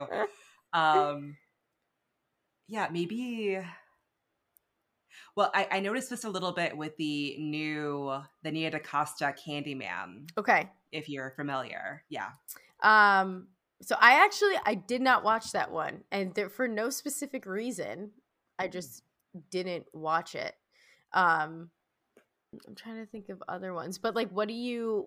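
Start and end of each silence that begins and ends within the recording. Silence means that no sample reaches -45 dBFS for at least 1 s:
1.34–2.69

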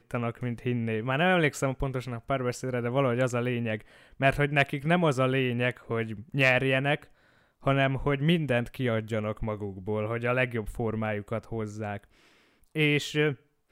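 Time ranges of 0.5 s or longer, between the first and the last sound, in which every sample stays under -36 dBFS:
7.03–7.66
11.98–12.75

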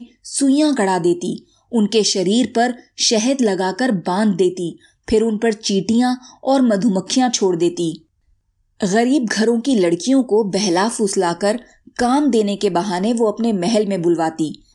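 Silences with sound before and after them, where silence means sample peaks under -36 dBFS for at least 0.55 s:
7.98–8.81

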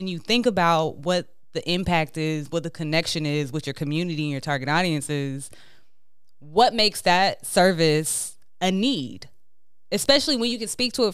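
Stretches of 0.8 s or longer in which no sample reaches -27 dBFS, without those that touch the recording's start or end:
5.53–6.56

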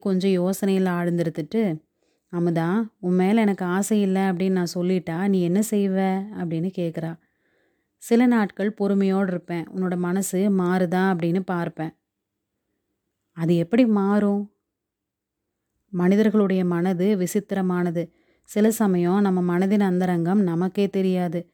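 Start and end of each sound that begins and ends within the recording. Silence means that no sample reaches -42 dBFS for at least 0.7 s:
8.02–11.9
13.36–14.47

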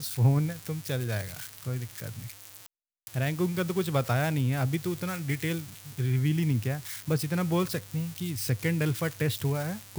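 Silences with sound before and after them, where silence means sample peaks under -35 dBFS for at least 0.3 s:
2.66–3.07

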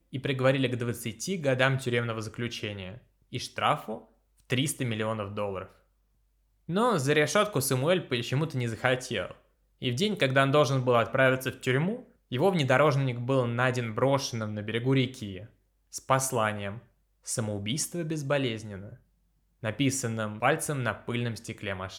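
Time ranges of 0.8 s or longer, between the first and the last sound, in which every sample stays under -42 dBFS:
5.66–6.69

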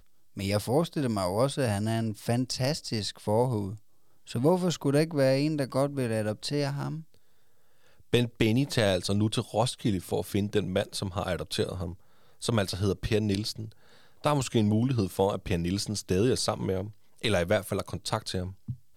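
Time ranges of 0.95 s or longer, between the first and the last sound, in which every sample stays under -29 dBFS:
6.94–8.14

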